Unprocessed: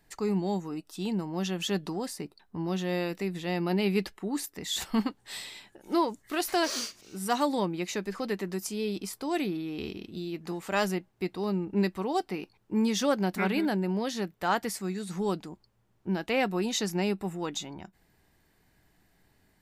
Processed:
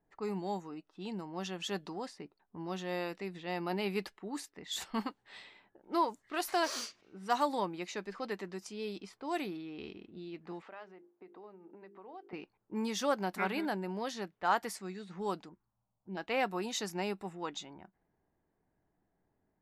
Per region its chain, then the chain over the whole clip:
10.62–12.33 s: hum notches 50/100/150/200/250/300/350/400/450/500 Hz + compression 10:1, threshold -36 dBFS + band-pass 320–5600 Hz
15.49–16.17 s: treble shelf 3.6 kHz -10.5 dB + transient shaper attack -5 dB, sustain +1 dB + touch-sensitive phaser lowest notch 340 Hz, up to 1.4 kHz, full sweep at -36 dBFS
whole clip: bass shelf 190 Hz -9 dB; level-controlled noise filter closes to 850 Hz, open at -28 dBFS; dynamic bell 1 kHz, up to +6 dB, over -41 dBFS, Q 0.9; trim -6.5 dB

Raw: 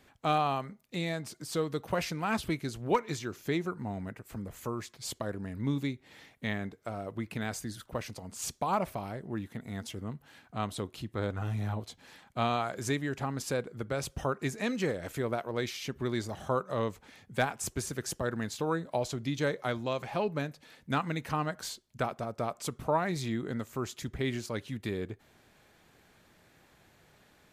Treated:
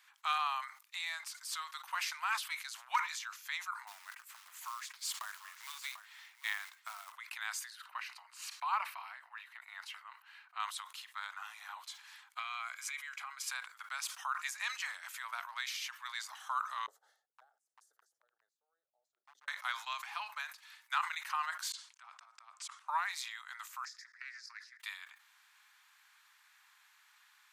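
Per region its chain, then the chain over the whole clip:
3.87–7.12 s: short-mantissa float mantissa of 2-bit + delay 743 ms -14.5 dB
7.70–10.60 s: resonant high shelf 4.7 kHz -9 dB, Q 1.5 + band-stop 3.4 kHz, Q 5.8
12.39–13.48 s: compression, threshold -32 dBFS + peaking EQ 2.3 kHz +7.5 dB 0.32 oct + comb of notches 900 Hz
16.86–19.48 s: inverse Chebyshev low-pass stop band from 930 Hz, stop band 50 dB + hard clipper -27.5 dBFS
21.72–22.88 s: low-pass 9 kHz 24 dB/octave + compression 4:1, threshold -41 dBFS + slow attack 191 ms
23.85–24.80 s: two resonant band-passes 3 kHz, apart 1.5 oct + loudspeaker Doppler distortion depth 0.13 ms
whole clip: steep high-pass 960 Hz 48 dB/octave; decay stretcher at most 120 dB/s

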